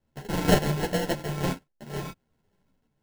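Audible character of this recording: a buzz of ramps at a fixed pitch in blocks of 32 samples; random-step tremolo 3.5 Hz; aliases and images of a low sample rate 1.2 kHz, jitter 0%; a shimmering, thickened sound

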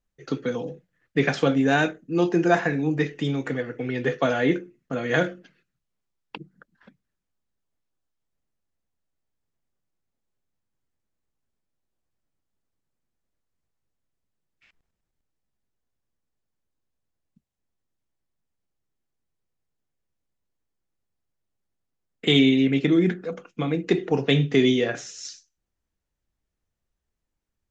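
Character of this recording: noise floor -82 dBFS; spectral tilt -4.5 dB/octave

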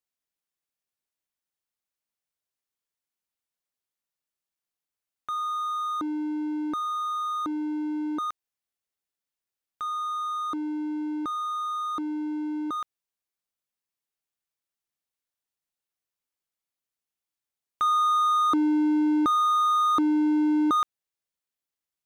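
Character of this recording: noise floor -90 dBFS; spectral tilt -2.0 dB/octave

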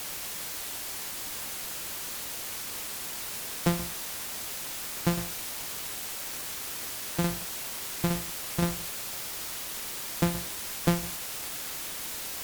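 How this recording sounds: a buzz of ramps at a fixed pitch in blocks of 256 samples; tremolo saw down 5.8 Hz, depth 60%; a quantiser's noise floor 6-bit, dither triangular; Vorbis

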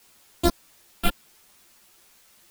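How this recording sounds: a buzz of ramps at a fixed pitch in blocks of 128 samples; phasing stages 12, 2.6 Hz, lowest notch 100–2600 Hz; a quantiser's noise floor 10-bit, dither triangular; a shimmering, thickened sound

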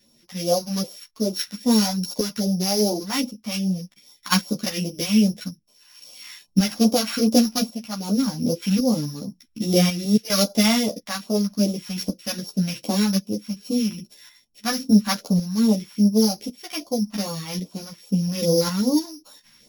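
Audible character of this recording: a buzz of ramps at a fixed pitch in blocks of 8 samples; phasing stages 2, 2.5 Hz, lowest notch 410–1800 Hz; tremolo saw up 0.91 Hz, depth 60%; a shimmering, thickened sound

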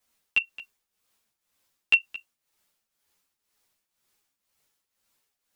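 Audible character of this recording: tremolo triangle 2 Hz, depth 80%; a shimmering, thickened sound

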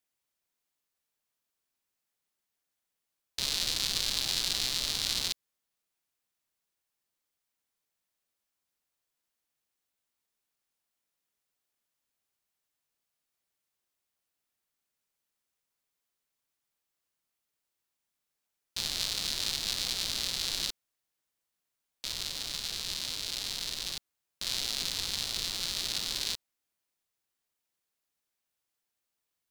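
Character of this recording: noise floor -85 dBFS; spectral tilt -1.0 dB/octave

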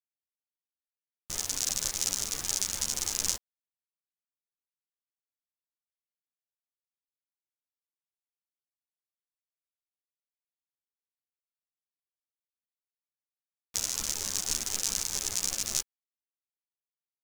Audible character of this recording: a quantiser's noise floor 6-bit, dither none; a shimmering, thickened sound

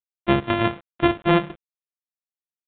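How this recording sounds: a buzz of ramps at a fixed pitch in blocks of 128 samples; chopped level 2 Hz, depth 65%, duty 80%; a quantiser's noise floor 8-bit, dither none; µ-law

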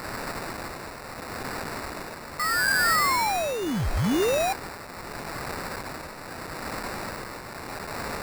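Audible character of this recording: a quantiser's noise floor 6-bit, dither triangular; tremolo triangle 0.77 Hz, depth 60%; aliases and images of a low sample rate 3.2 kHz, jitter 0%

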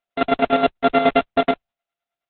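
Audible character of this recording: a buzz of ramps at a fixed pitch in blocks of 64 samples; chopped level 9.5 Hz, depth 60%, duty 35%; Opus

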